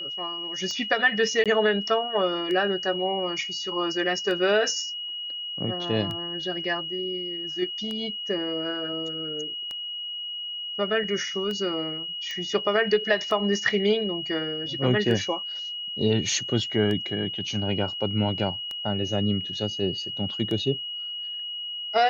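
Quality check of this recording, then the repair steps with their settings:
tick 33 1/3 rpm -20 dBFS
tone 2900 Hz -31 dBFS
1.44–1.46 gap 17 ms
12.31 pop -21 dBFS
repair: de-click; notch 2900 Hz, Q 30; interpolate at 1.44, 17 ms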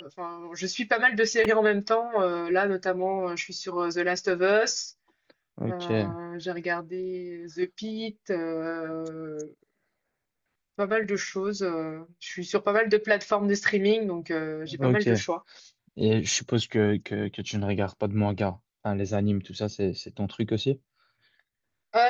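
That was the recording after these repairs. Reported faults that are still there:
none

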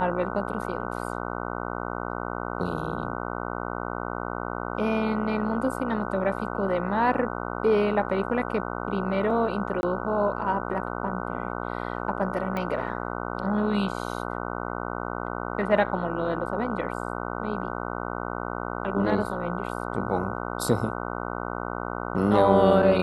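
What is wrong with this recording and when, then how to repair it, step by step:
buzz 60 Hz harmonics 25 -32 dBFS
9.81–9.83 gap 21 ms
12.57 pop -18 dBFS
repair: de-click; de-hum 60 Hz, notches 25; interpolate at 9.81, 21 ms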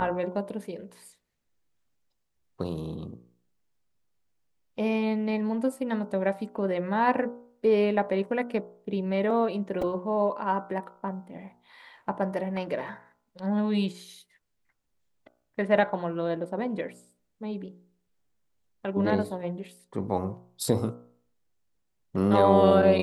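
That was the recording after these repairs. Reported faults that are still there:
none

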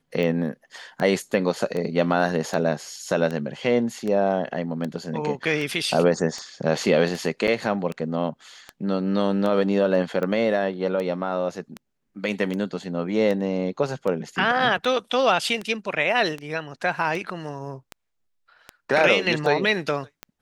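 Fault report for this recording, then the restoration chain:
tick 78 rpm -17 dBFS
7.47–7.48 gap 7.6 ms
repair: de-click; interpolate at 7.47, 7.6 ms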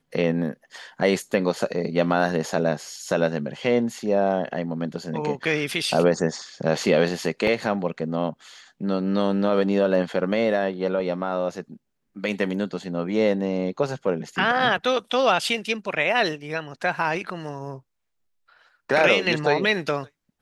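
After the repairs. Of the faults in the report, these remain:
none

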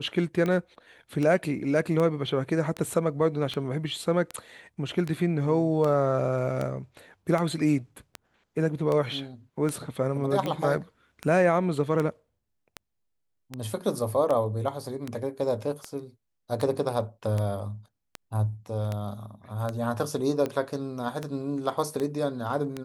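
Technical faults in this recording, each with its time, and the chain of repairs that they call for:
tick 78 rpm -17 dBFS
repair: de-click

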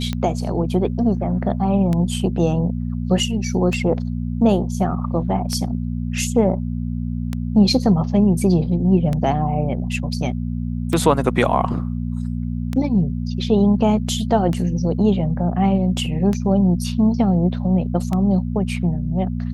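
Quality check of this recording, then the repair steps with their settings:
hum 60 Hz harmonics 4 -24 dBFS
tick 33 1/3 rpm -11 dBFS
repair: de-click; de-hum 60 Hz, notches 4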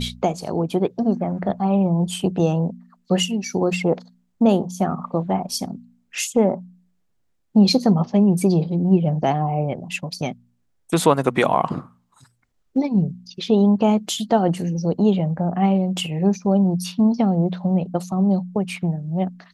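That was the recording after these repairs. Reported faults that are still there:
none

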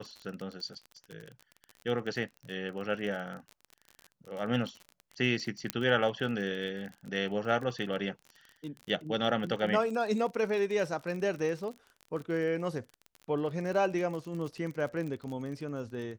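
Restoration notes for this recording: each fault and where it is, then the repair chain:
crackle 36/s -37 dBFS
5.7 pop -13 dBFS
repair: de-click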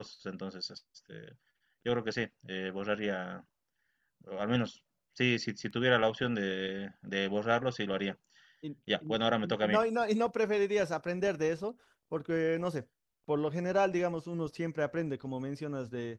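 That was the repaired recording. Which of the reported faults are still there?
5.7 pop

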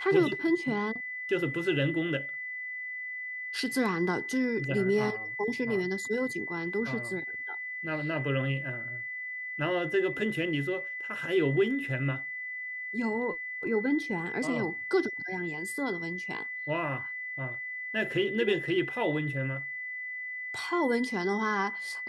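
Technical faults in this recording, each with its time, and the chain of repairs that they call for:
tone 2000 Hz -35 dBFS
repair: notch 2000 Hz, Q 30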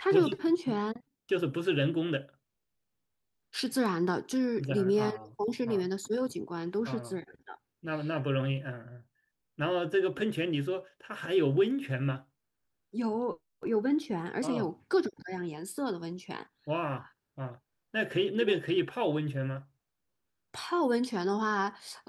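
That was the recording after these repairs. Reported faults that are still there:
none

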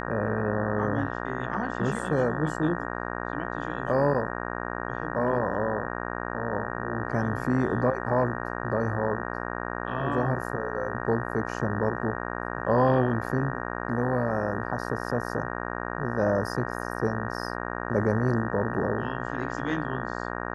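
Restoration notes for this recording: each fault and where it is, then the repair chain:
buzz 60 Hz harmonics 31 -33 dBFS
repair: de-hum 60 Hz, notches 31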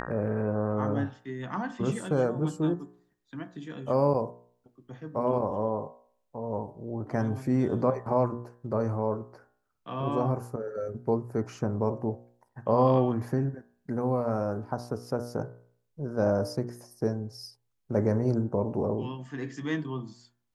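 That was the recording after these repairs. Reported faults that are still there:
none

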